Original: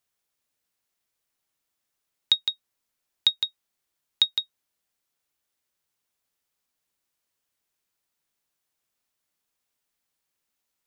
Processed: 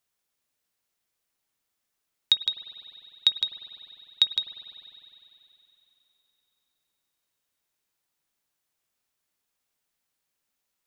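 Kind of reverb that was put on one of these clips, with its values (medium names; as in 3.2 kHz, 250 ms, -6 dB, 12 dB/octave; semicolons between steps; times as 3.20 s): spring tank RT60 3.3 s, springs 50 ms, chirp 75 ms, DRR 9 dB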